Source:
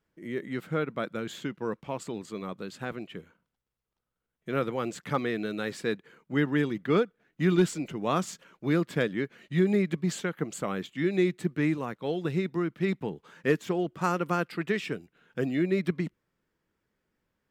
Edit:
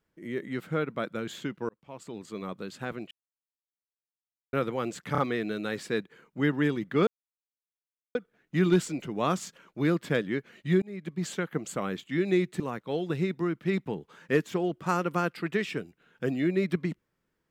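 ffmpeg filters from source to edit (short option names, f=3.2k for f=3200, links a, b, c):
-filter_complex "[0:a]asplit=9[a][b][c][d][e][f][g][h][i];[a]atrim=end=1.69,asetpts=PTS-STARTPTS,afade=t=out:st=1.686:d=0.004:c=hsin[j];[b]atrim=start=1.69:end=3.11,asetpts=PTS-STARTPTS,afade=t=in:d=0.73,afade=t=out:st=1.416:d=0.004:c=hsin[k];[c]atrim=start=3.11:end=4.53,asetpts=PTS-STARTPTS,volume=0[l];[d]atrim=start=4.53:end=5.152,asetpts=PTS-STARTPTS,afade=t=in:d=0.004:c=hsin[m];[e]atrim=start=5.118:end=5.152[n];[f]atrim=start=5.118:end=7.01,asetpts=PTS-STARTPTS,afade=t=out:st=1.888:d=0.004:c=hsin,apad=pad_dur=1.08[o];[g]atrim=start=7.01:end=9.68,asetpts=PTS-STARTPTS,afade=t=in:d=0.004:c=hsin,afade=t=out:st=2.666:d=0.004:c=hsin[p];[h]atrim=start=9.68:end=11.462,asetpts=PTS-STARTPTS,afade=t=in:d=0.57[q];[i]atrim=start=11.748[r];[j][k][l][m]concat=n=4:v=0:a=1[s];[s][n]acrossfade=d=0.004:c1=hsin:c2=hsin[t];[o][p][q]concat=n=3:v=0:a=1[u];[t][u]acrossfade=d=0.004:c1=hsin:c2=hsin[v];[v][r]acrossfade=d=0.004:c1=hsin:c2=hsin"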